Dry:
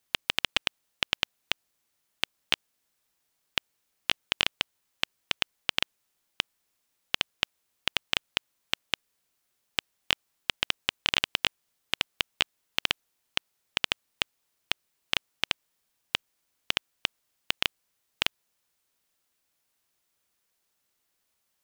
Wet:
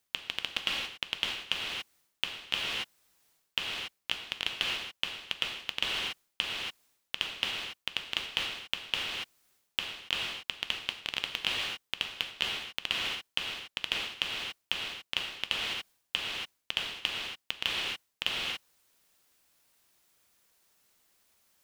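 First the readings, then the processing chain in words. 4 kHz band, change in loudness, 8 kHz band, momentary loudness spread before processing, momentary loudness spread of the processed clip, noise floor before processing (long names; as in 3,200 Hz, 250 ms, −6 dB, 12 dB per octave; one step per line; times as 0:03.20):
−1.5 dB, −2.5 dB, −3.0 dB, 6 LU, 5 LU, −77 dBFS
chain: reverb whose tail is shaped and stops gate 310 ms flat, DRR 7.5 dB
reversed playback
downward compressor 12 to 1, threshold −35 dBFS, peak gain reduction 18 dB
reversed playback
level +7 dB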